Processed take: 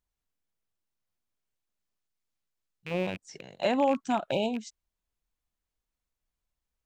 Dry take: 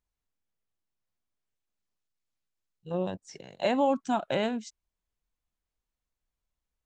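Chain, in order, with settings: rattling part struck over -45 dBFS, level -28 dBFS; spectral delete 4.31–4.56, 980–2200 Hz

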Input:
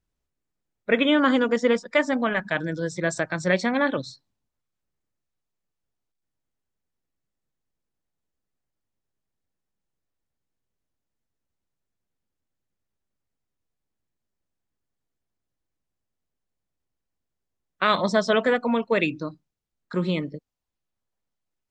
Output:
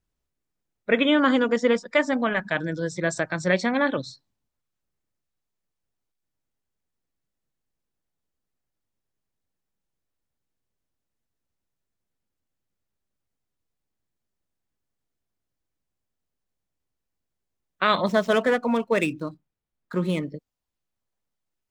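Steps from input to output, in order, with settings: 18.06–20.3 median filter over 9 samples

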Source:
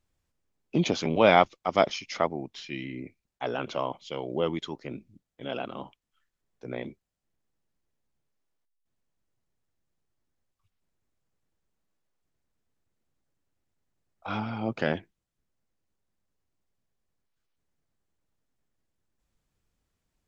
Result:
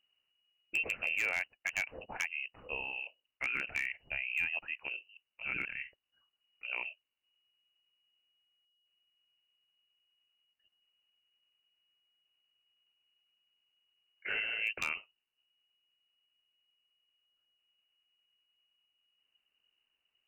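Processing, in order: compressor 12:1, threshold -26 dBFS, peak gain reduction 14 dB; inverted band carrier 2900 Hz; wavefolder -20 dBFS; gain -3 dB

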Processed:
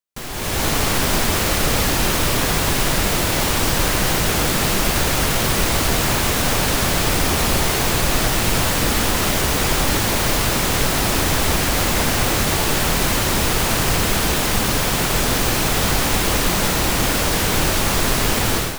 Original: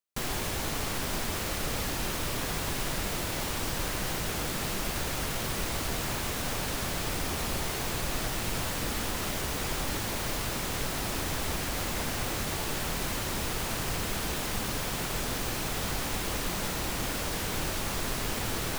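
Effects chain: AGC gain up to 14 dB

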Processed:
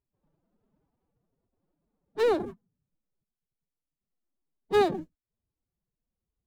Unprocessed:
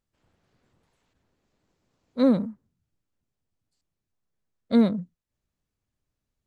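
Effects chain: median filter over 25 samples; formant-preserving pitch shift +10 st; mismatched tape noise reduction decoder only; gain -3 dB

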